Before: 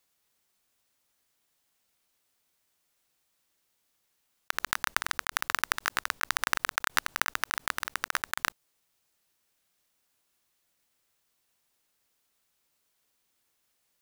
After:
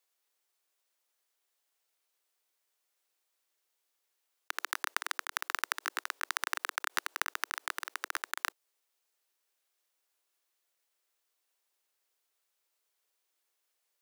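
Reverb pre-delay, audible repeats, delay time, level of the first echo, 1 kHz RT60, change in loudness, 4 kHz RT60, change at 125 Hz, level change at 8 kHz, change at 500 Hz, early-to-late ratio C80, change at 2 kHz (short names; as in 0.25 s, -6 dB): none, none, none, none, none, -5.5 dB, none, under -40 dB, -5.5 dB, -5.5 dB, none, -5.5 dB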